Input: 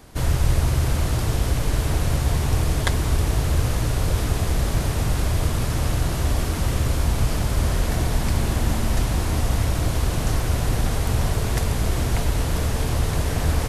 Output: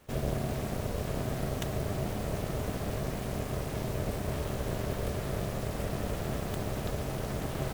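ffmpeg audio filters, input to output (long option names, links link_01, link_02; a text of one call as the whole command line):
ffmpeg -i in.wav -af "tremolo=f=290:d=0.889,asetrate=78057,aresample=44100,volume=-9dB" out.wav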